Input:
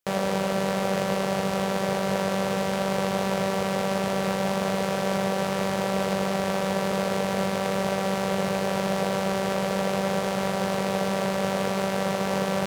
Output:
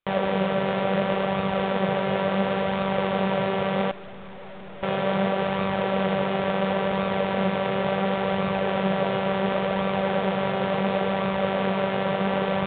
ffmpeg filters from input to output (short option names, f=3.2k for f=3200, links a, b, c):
-filter_complex "[0:a]flanger=delay=0.8:depth=6.8:regen=60:speed=0.71:shape=sinusoidal,asettb=1/sr,asplit=3[a][b][c];[a]atrim=end=3.914[d];[b]atrim=start=3.91:end=4.83,asetpts=PTS-STARTPTS,afade=t=in:d=0.004:c=qsin,afade=t=out:st=0.916:d=0.004:c=qsin,aeval=exprs='(tanh(200*val(0)+0.75)-tanh(0.75))/200':c=same[e];[c]atrim=start=4.826[f];[d][e]acrossfade=d=0.004:c1=hsin:c2=qsin[g];[g][f]acrossfade=d=0.004:c1=qsin:c2=hsin,aresample=8000,aresample=44100,volume=6dB"